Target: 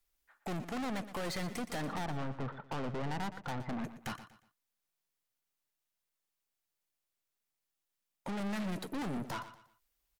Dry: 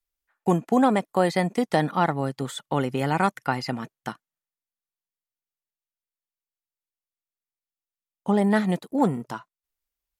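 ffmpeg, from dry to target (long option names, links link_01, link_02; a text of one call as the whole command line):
ffmpeg -i in.wav -filter_complex "[0:a]asettb=1/sr,asplit=3[link_01][link_02][link_03];[link_01]atrim=end=1.834[link_04];[link_02]atrim=start=1.83:end=3.84,asetpts=PTS-STARTPTS,afade=type=in:duration=0.004:curve=qsin,afade=type=out:start_time=2.006:duration=0.004:curve=qsin,lowpass=frequency=1200:width=0.5412,lowpass=frequency=1200:width=1.3066[link_05];[link_03]atrim=start=3.836[link_06];[link_04][link_05]acrossfade=duration=0.004:curve1=hsin:curve2=qsin[link_07];[link_07][link_06]acrossfade=duration=0.004:curve1=qsin:curve2=hsin,acompressor=threshold=-24dB:ratio=6,aeval=exprs='(tanh(126*val(0)+0.2)-tanh(0.2))/126':channel_layout=same,aecho=1:1:119|238|357:0.224|0.0716|0.0229,volume=6dB" out.wav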